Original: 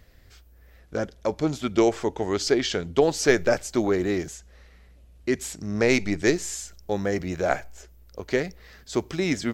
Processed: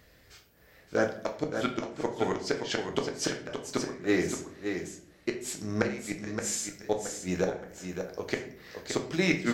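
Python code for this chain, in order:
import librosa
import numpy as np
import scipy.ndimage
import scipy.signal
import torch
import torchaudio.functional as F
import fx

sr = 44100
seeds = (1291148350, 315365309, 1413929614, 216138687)

y = fx.highpass(x, sr, hz=190.0, slope=6)
y = fx.dynamic_eq(y, sr, hz=1500.0, q=1.1, threshold_db=-37.0, ratio=4.0, max_db=5)
y = fx.gate_flip(y, sr, shuts_db=-14.0, range_db=-25)
y = y + 10.0 ** (-7.0 / 20.0) * np.pad(y, (int(571 * sr / 1000.0), 0))[:len(y)]
y = fx.room_shoebox(y, sr, seeds[0], volume_m3=71.0, walls='mixed', distance_m=0.49)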